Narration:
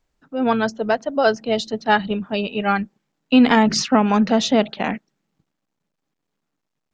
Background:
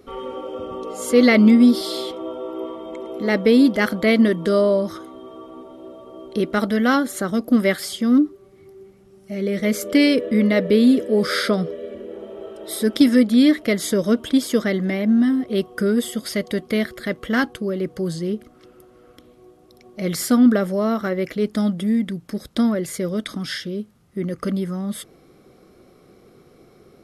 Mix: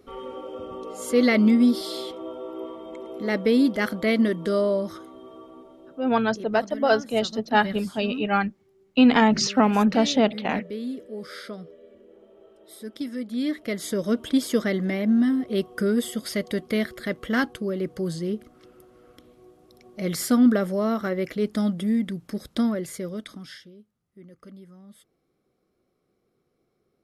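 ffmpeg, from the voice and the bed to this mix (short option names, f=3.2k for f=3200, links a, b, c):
-filter_complex "[0:a]adelay=5650,volume=-3dB[a];[1:a]volume=8.5dB,afade=t=out:st=5.35:d=0.95:silence=0.251189,afade=t=in:st=13.18:d=1.26:silence=0.199526,afade=t=out:st=22.48:d=1.27:silence=0.11885[b];[a][b]amix=inputs=2:normalize=0"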